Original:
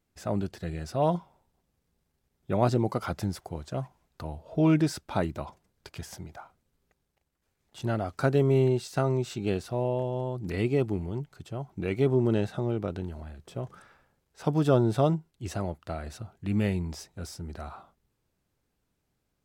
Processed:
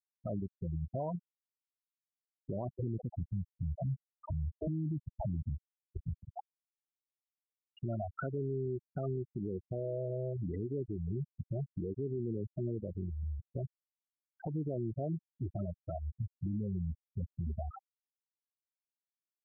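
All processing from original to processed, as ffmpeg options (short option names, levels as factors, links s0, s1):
-filter_complex "[0:a]asettb=1/sr,asplit=3[s0][s1][s2];[s0]atrim=end=2.694[s3];[s1]atrim=start=2.69:end=6.29,asetpts=PTS-STARTPTS,afade=t=in:d=0.004:c=qsin,afade=t=out:st=3.596:d=0.004:c=qsin,asubboost=boost=8.5:cutoff=240,acrossover=split=480|1500[s4][s5][s6];[s5]adelay=40[s7];[s4]adelay=100[s8];[s8][s7][s6]amix=inputs=3:normalize=0,atrim=end_sample=158760[s9];[s2]atrim=start=6.286[s10];[s3][s9]acrossfade=d=0.004:c1=hsin:c2=qsin[s11];[s11][s10]acrossfade=d=0.004:c1=qsin:c2=hsin,acompressor=threshold=0.0126:ratio=5,afftfilt=real='re*gte(hypot(re,im),0.0355)':imag='im*gte(hypot(re,im),0.0355)':win_size=1024:overlap=0.75,alimiter=level_in=4.47:limit=0.0631:level=0:latency=1:release=61,volume=0.224,volume=2.51"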